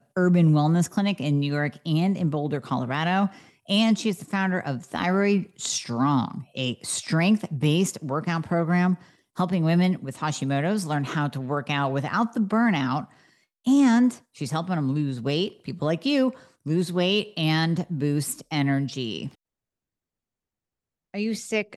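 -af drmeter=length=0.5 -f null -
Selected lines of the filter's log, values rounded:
Channel 1: DR: 7.3
Overall DR: 7.3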